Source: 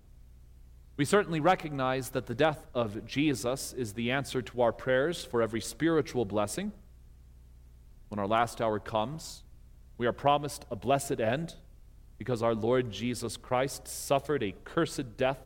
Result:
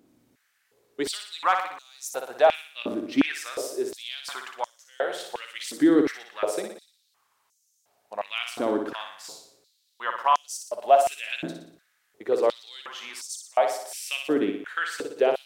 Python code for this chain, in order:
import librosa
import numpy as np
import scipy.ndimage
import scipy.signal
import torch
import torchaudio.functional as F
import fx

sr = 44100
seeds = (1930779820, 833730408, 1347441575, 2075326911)

y = fx.room_flutter(x, sr, wall_m=10.2, rt60_s=0.62)
y = fx.filter_held_highpass(y, sr, hz=2.8, low_hz=280.0, high_hz=6300.0)